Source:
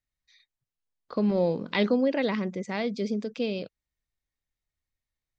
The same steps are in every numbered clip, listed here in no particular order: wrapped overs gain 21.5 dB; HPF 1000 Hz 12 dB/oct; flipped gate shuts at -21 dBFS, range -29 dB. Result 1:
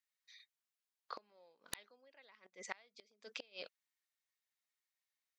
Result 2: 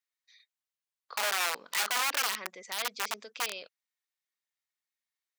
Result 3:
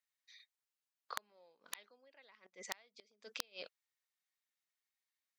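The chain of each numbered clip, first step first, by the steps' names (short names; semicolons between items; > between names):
flipped gate > HPF > wrapped overs; wrapped overs > flipped gate > HPF; flipped gate > wrapped overs > HPF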